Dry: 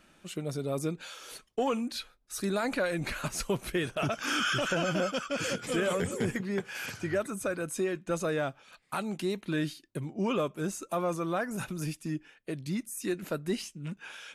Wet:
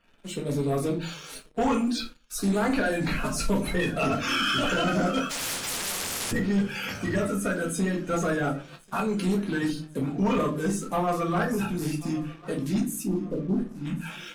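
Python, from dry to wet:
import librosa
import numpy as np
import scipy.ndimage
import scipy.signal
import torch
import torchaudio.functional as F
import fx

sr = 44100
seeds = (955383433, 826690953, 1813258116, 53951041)

y = fx.spec_quant(x, sr, step_db=30)
y = fx.cheby1_lowpass(y, sr, hz=580.0, order=8, at=(13.03, 13.72))
y = fx.echo_thinned(y, sr, ms=1090, feedback_pct=44, hz=420.0, wet_db=-20)
y = fx.room_shoebox(y, sr, seeds[0], volume_m3=190.0, walls='furnished', distance_m=1.7)
y = fx.leveller(y, sr, passes=2)
y = fx.low_shelf(y, sr, hz=100.0, db=7.5)
y = fx.spectral_comp(y, sr, ratio=10.0, at=(5.29, 6.31), fade=0.02)
y = F.gain(torch.from_numpy(y), -5.0).numpy()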